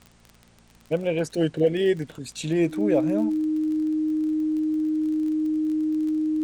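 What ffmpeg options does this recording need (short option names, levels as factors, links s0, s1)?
-af "adeclick=t=4,bandreject=f=57.3:t=h:w=4,bandreject=f=114.6:t=h:w=4,bandreject=f=171.9:t=h:w=4,bandreject=f=229.2:t=h:w=4,bandreject=f=310:w=30,agate=range=0.0891:threshold=0.00501"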